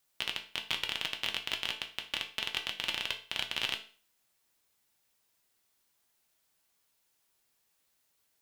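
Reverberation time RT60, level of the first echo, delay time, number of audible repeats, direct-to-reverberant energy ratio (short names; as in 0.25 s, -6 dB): 0.40 s, none, none, none, 3.0 dB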